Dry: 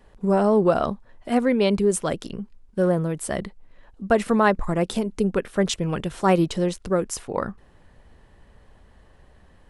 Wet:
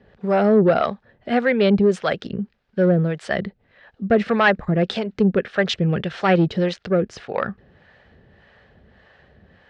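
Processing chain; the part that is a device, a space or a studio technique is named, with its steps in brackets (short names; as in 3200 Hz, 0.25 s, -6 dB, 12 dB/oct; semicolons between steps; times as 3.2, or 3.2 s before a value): guitar amplifier with harmonic tremolo (harmonic tremolo 1.7 Hz, depth 70%, crossover 540 Hz; soft clip -14.5 dBFS, distortion -17 dB; speaker cabinet 99–4500 Hz, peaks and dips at 300 Hz -7 dB, 1000 Hz -9 dB, 1700 Hz +5 dB); gain +8.5 dB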